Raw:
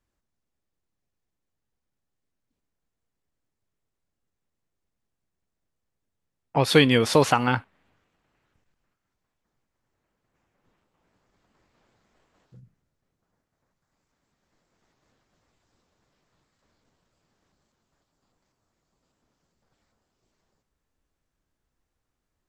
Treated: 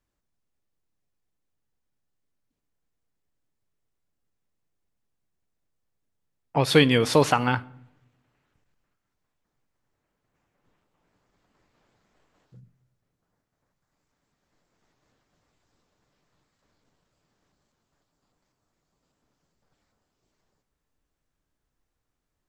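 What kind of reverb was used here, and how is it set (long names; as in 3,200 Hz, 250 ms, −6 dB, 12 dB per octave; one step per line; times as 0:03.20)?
rectangular room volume 2,100 cubic metres, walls furnished, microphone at 0.38 metres
level −1 dB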